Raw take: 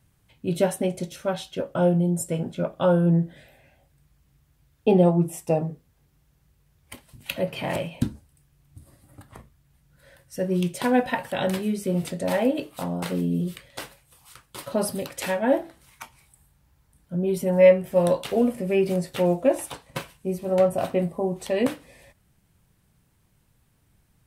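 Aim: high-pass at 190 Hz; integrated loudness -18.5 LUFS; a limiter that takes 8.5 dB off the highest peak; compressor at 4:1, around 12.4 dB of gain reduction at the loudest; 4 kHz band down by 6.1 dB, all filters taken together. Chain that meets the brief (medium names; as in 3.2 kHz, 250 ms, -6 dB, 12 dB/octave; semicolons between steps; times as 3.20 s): high-pass 190 Hz; peaking EQ 4 kHz -8.5 dB; compression 4:1, threshold -25 dBFS; trim +15 dB; peak limiter -7.5 dBFS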